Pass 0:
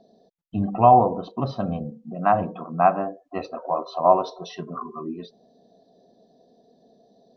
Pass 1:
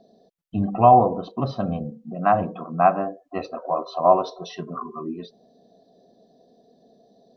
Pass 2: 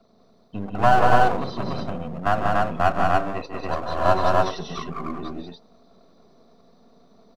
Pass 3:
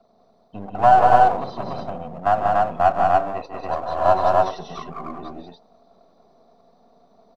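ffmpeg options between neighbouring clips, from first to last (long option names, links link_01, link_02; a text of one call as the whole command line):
ffmpeg -i in.wav -af "bandreject=frequency=900:width=11,volume=1dB" out.wav
ffmpeg -i in.wav -filter_complex "[0:a]acrossover=split=230|1200[link_01][link_02][link_03];[link_01]acompressor=threshold=-36dB:ratio=6[link_04];[link_02]aeval=exprs='max(val(0),0)':channel_layout=same[link_05];[link_04][link_05][link_03]amix=inputs=3:normalize=0,aecho=1:1:151.6|189.5|288.6:0.355|0.708|0.891" out.wav
ffmpeg -i in.wav -af "equalizer=frequency=750:width_type=o:width=0.93:gain=10.5,volume=-5dB" out.wav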